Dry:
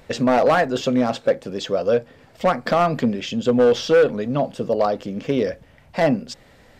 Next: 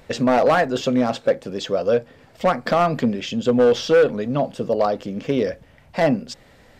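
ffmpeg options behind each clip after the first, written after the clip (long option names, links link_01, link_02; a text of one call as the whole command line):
ffmpeg -i in.wav -af anull out.wav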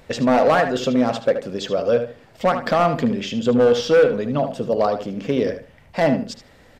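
ffmpeg -i in.wav -filter_complex "[0:a]asplit=2[link_01][link_02];[link_02]adelay=75,lowpass=frequency=3800:poles=1,volume=-8.5dB,asplit=2[link_03][link_04];[link_04]adelay=75,lowpass=frequency=3800:poles=1,volume=0.23,asplit=2[link_05][link_06];[link_06]adelay=75,lowpass=frequency=3800:poles=1,volume=0.23[link_07];[link_01][link_03][link_05][link_07]amix=inputs=4:normalize=0" out.wav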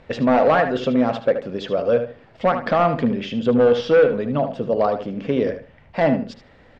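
ffmpeg -i in.wav -af "lowpass=3200" out.wav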